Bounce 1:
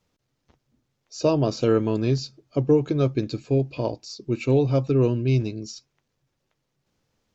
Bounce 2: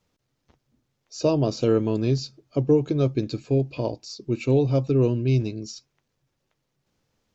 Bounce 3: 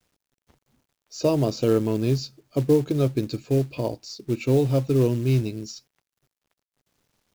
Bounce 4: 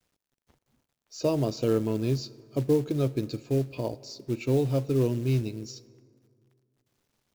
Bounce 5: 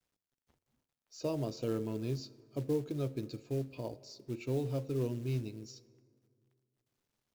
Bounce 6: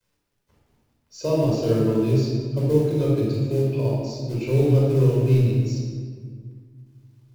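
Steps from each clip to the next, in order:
dynamic equaliser 1,500 Hz, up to −5 dB, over −38 dBFS, Q 0.97
log-companded quantiser 6 bits
dense smooth reverb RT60 2.4 s, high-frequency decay 0.5×, DRR 19 dB; level −4.5 dB
hum removal 88.61 Hz, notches 7; level −9 dB
rectangular room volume 2,200 cubic metres, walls mixed, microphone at 5 metres; level +5 dB

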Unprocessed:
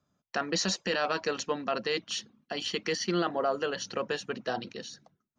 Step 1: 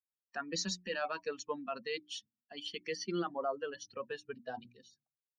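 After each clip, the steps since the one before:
spectral dynamics exaggerated over time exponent 2
mains-hum notches 60/120/180/240/300/360 Hz
level −4 dB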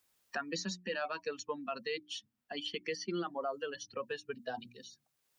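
multiband upward and downward compressor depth 70%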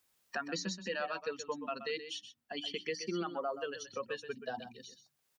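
single-tap delay 127 ms −11 dB

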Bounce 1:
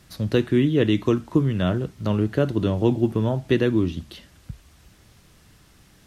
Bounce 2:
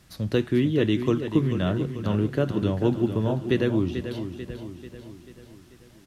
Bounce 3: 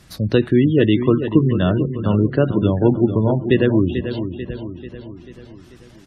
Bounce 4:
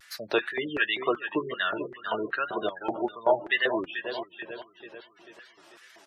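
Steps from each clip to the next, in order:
repeating echo 440 ms, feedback 53%, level −9.5 dB; level −3 dB
gate on every frequency bin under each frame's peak −30 dB strong; level +7.5 dB
auto-filter high-pass square 2.6 Hz 730–1,600 Hz; notch comb filter 260 Hz; tape wow and flutter 100 cents; level −1.5 dB

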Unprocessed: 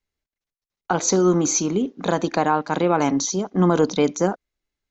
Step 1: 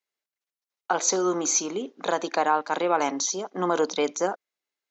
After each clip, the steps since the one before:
high-pass filter 460 Hz 12 dB per octave
level −1.5 dB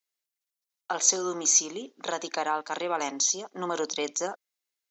high-shelf EQ 3,100 Hz +12 dB
level −7 dB

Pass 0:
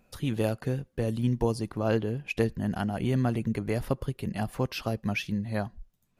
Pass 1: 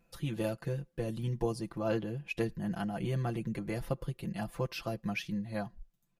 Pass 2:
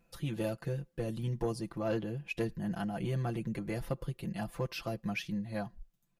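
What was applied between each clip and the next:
comb filter 5.9 ms, depth 80%; level −7.5 dB
soft clipping −22.5 dBFS, distortion −23 dB

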